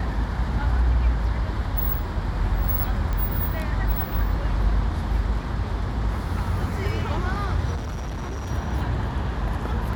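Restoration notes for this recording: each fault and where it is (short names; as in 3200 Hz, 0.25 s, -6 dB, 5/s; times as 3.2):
3.13 pop -16 dBFS
7.75–8.52 clipped -27 dBFS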